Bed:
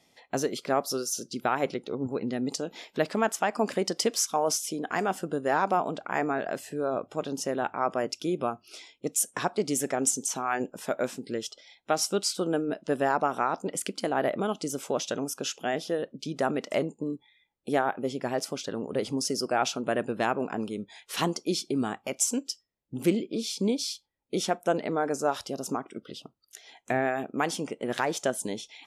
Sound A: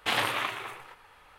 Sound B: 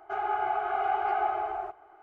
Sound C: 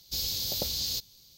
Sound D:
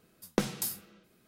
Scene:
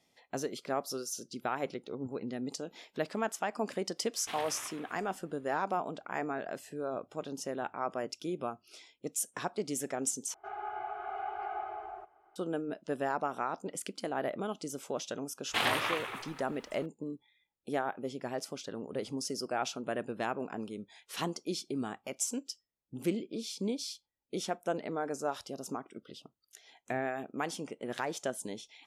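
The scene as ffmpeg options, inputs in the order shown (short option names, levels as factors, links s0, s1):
-filter_complex "[1:a]asplit=2[s0][s1];[0:a]volume=0.422[s2];[s1]acrusher=bits=11:mix=0:aa=0.000001[s3];[s2]asplit=2[s4][s5];[s4]atrim=end=10.344[s6];[2:a]atrim=end=2.02,asetpts=PTS-STARTPTS,volume=0.299[s7];[s5]atrim=start=12.356[s8];[s0]atrim=end=1.38,asetpts=PTS-STARTPTS,volume=0.168,afade=t=in:d=0.004:c=hsin,afade=t=out:st=1.376:d=0.004:c=hsin,adelay=185661S[s9];[s3]atrim=end=1.38,asetpts=PTS-STARTPTS,volume=0.75,afade=t=in:d=0.004:c=hsin,afade=t=out:st=1.376:d=0.004:c=hsin,adelay=15480[s10];[s6][s7]acrossfade=d=0.004:c1=hsin:c2=hsin[s11];[s11][s8]acrossfade=d=0.004:c1=hsin:c2=hsin[s12];[s12][s9][s10]amix=inputs=3:normalize=0"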